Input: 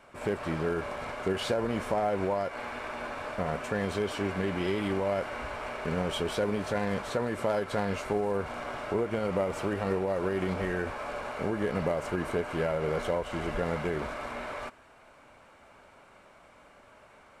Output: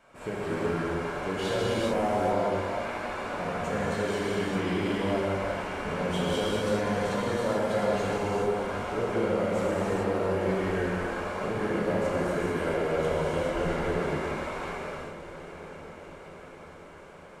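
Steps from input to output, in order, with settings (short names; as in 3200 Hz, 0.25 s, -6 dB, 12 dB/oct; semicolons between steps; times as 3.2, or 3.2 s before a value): bell 6700 Hz +2.5 dB 0.34 oct; diffused feedback echo 0.847 s, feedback 65%, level -13.5 dB; non-linear reverb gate 0.46 s flat, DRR -7 dB; gain -5.5 dB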